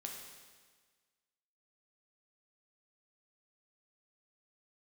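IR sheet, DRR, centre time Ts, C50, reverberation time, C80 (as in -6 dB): 0.0 dB, 57 ms, 3.0 dB, 1.5 s, 5.0 dB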